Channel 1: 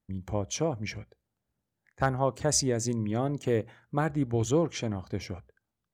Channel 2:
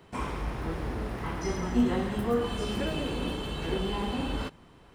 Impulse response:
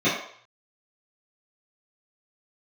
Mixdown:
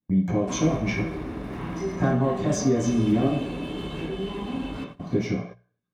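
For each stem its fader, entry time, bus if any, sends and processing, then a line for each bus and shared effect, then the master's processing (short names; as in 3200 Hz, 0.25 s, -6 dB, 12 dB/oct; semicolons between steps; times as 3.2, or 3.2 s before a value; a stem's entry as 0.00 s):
+1.5 dB, 0.00 s, muted 3.4–4.99, send -5.5 dB, compressor 10:1, threshold -35 dBFS, peak gain reduction 15.5 dB
+3.0 dB, 0.35 s, send -14.5 dB, compressor 5:1, threshold -36 dBFS, peak gain reduction 15 dB; soft clip -34 dBFS, distortion -16 dB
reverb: on, RT60 0.60 s, pre-delay 3 ms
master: gate -40 dBFS, range -15 dB; bell 170 Hz +4.5 dB 0.45 oct; notches 60/120/180 Hz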